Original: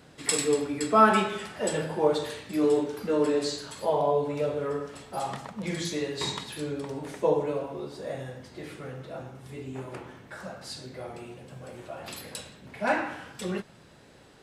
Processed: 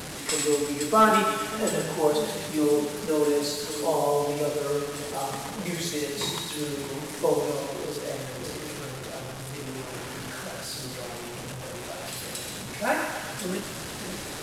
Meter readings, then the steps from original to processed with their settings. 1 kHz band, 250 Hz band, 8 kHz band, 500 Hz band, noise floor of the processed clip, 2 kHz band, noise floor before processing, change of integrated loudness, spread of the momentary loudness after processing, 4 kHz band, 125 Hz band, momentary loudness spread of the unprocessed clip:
+1.0 dB, +1.0 dB, +4.5 dB, +1.0 dB, -37 dBFS, +2.0 dB, -54 dBFS, +0.5 dB, 11 LU, +4.0 dB, +2.0 dB, 17 LU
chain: delta modulation 64 kbps, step -32 dBFS; high shelf 7500 Hz +6.5 dB; split-band echo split 450 Hz, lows 0.591 s, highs 0.129 s, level -8 dB

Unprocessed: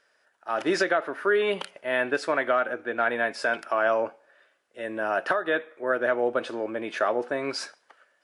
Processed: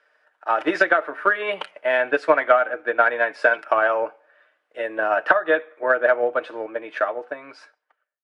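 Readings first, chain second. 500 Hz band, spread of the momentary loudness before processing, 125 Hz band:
+4.5 dB, 8 LU, n/a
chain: ending faded out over 2.23 s; three-band isolator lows -14 dB, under 350 Hz, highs -15 dB, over 3200 Hz; notch 410 Hz, Q 12; comb 6.6 ms, depth 42%; transient shaper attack +7 dB, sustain -1 dB; gain +3.5 dB

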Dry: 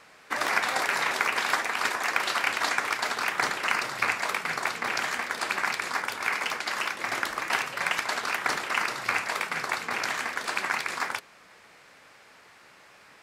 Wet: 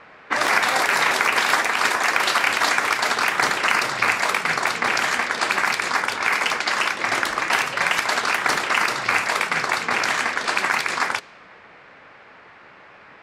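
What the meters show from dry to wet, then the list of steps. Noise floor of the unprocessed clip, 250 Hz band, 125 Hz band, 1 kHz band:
-54 dBFS, +8.0 dB, +8.0 dB, +7.5 dB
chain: low-pass opened by the level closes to 2200 Hz, open at -24 dBFS; in parallel at +0.5 dB: limiter -17.5 dBFS, peak gain reduction 10.5 dB; on the sum: gain +2.5 dB

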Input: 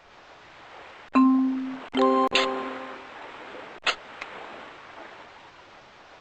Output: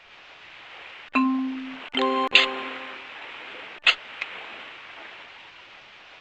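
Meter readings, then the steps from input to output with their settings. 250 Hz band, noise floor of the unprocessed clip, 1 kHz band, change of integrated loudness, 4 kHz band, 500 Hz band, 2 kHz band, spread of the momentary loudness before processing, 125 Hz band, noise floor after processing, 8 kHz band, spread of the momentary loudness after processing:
-4.5 dB, -51 dBFS, -1.5 dB, +1.0 dB, +7.0 dB, -4.0 dB, +7.0 dB, 22 LU, n/a, -49 dBFS, -1.5 dB, 23 LU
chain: bell 2700 Hz +14 dB 1.4 oct; de-hum 294.7 Hz, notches 6; gain -4.5 dB

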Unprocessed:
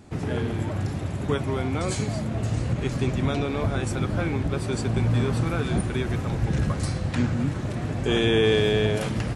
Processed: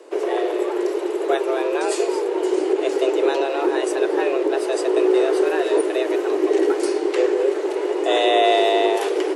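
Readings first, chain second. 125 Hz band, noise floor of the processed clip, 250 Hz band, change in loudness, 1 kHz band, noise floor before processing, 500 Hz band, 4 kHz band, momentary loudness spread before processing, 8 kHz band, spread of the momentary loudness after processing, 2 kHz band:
under -40 dB, -26 dBFS, +3.5 dB, +5.5 dB, +10.5 dB, -31 dBFS, +10.5 dB, +3.5 dB, 7 LU, +3.0 dB, 5 LU, +3.5 dB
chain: frequency shift +260 Hz; small resonant body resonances 420/2900 Hz, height 6 dB; gain +3 dB

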